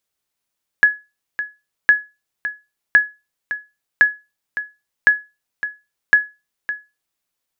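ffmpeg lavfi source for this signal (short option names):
-f lavfi -i "aevalsrc='0.708*(sin(2*PI*1690*mod(t,1.06))*exp(-6.91*mod(t,1.06)/0.25)+0.237*sin(2*PI*1690*max(mod(t,1.06)-0.56,0))*exp(-6.91*max(mod(t,1.06)-0.56,0)/0.25))':d=6.36:s=44100"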